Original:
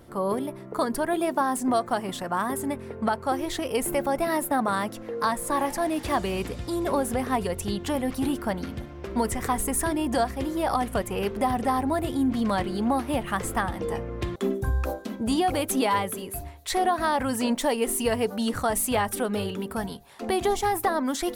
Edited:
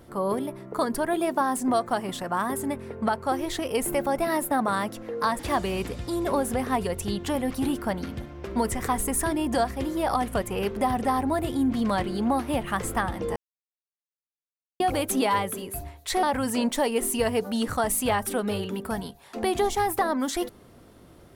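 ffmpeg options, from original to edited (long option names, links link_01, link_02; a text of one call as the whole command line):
ffmpeg -i in.wav -filter_complex "[0:a]asplit=5[link_01][link_02][link_03][link_04][link_05];[link_01]atrim=end=5.392[link_06];[link_02]atrim=start=5.988:end=13.96,asetpts=PTS-STARTPTS,afade=type=out:start_time=7.968:duration=0.004:curve=hsin[link_07];[link_03]atrim=start=13.96:end=15.4,asetpts=PTS-STARTPTS,volume=0[link_08];[link_04]atrim=start=15.4:end=16.832,asetpts=PTS-STARTPTS,afade=type=in:duration=0.004:curve=hsin[link_09];[link_05]atrim=start=17.088[link_10];[link_07][link_08][link_09]concat=n=3:v=0:a=1[link_11];[link_06][link_11]acrossfade=duration=0.004:curve1=hsin:curve2=hsin[link_12];[link_12][link_10]acrossfade=duration=0.004:curve1=hsin:curve2=hsin" out.wav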